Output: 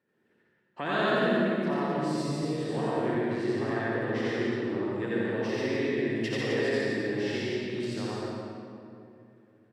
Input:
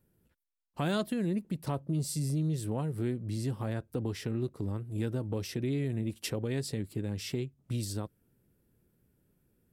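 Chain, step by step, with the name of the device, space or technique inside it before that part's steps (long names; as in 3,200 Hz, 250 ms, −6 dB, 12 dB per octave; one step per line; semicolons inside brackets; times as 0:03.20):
station announcement (band-pass filter 320–3,600 Hz; parametric band 1,800 Hz +11 dB 0.26 octaves; loudspeakers that aren't time-aligned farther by 30 metres 0 dB, 49 metres −3 dB, 89 metres −5 dB; convolution reverb RT60 2.6 s, pre-delay 51 ms, DRR −3.5 dB)
0:02.40–0:03.15: double-tracking delay 24 ms −5 dB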